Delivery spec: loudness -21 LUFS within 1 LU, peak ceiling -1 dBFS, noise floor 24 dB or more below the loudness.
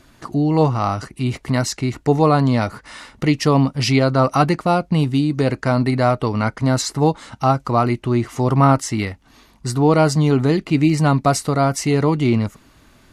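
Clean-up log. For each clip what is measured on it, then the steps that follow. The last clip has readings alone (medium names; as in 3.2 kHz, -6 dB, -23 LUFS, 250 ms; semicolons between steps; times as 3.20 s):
loudness -18.0 LUFS; peak level -2.5 dBFS; loudness target -21.0 LUFS
-> trim -3 dB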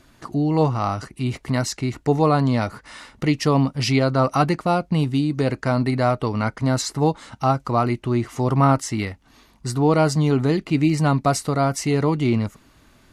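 loudness -21.0 LUFS; peak level -5.5 dBFS; noise floor -55 dBFS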